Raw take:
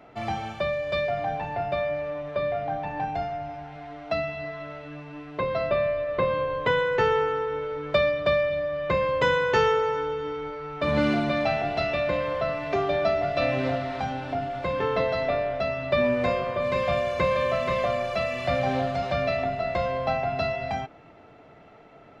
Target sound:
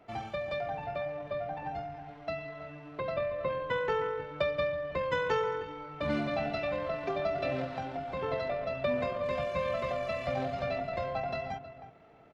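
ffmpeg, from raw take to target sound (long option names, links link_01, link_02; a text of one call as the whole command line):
ffmpeg -i in.wav -filter_complex "[0:a]asplit=2[link_01][link_02];[link_02]adelay=567,lowpass=frequency=1600:poles=1,volume=-11dB,asplit=2[link_03][link_04];[link_04]adelay=567,lowpass=frequency=1600:poles=1,volume=0.17[link_05];[link_01][link_03][link_05]amix=inputs=3:normalize=0,atempo=1.8,volume=-7.5dB" out.wav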